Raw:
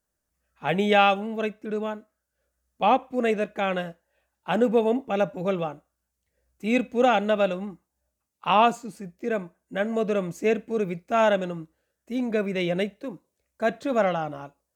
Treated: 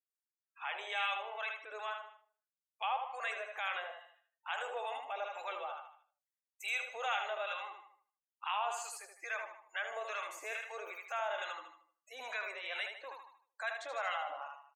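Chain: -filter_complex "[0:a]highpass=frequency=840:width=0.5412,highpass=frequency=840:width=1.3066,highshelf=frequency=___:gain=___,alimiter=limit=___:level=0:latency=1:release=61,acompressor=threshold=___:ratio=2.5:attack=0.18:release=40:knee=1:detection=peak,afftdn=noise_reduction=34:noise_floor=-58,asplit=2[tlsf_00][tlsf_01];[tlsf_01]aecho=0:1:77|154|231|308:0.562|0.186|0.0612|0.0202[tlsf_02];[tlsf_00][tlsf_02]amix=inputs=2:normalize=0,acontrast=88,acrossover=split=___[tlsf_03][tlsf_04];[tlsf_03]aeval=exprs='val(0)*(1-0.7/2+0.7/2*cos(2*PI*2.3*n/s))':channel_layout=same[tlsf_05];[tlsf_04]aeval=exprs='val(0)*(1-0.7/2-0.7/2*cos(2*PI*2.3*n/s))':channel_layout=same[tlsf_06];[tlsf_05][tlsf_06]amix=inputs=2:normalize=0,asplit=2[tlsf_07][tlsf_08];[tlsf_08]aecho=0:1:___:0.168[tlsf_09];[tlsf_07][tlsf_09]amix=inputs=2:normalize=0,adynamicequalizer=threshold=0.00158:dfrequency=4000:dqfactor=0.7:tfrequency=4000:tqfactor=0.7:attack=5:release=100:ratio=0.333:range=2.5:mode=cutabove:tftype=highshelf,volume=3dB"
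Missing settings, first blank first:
6200, 8.5, -12.5dB, -48dB, 810, 153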